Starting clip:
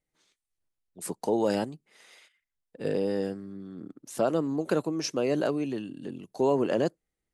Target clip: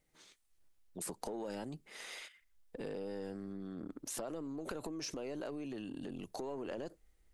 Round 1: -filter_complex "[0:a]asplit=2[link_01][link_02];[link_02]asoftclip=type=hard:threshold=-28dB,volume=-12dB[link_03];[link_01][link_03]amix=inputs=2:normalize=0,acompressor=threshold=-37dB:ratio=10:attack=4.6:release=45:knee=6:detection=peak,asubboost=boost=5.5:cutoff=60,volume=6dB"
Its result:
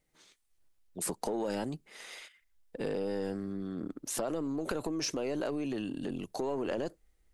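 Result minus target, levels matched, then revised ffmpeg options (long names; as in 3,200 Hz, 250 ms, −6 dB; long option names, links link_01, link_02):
downward compressor: peak gain reduction −8 dB
-filter_complex "[0:a]asplit=2[link_01][link_02];[link_02]asoftclip=type=hard:threshold=-28dB,volume=-12dB[link_03];[link_01][link_03]amix=inputs=2:normalize=0,acompressor=threshold=-46dB:ratio=10:attack=4.6:release=45:knee=6:detection=peak,asubboost=boost=5.5:cutoff=60,volume=6dB"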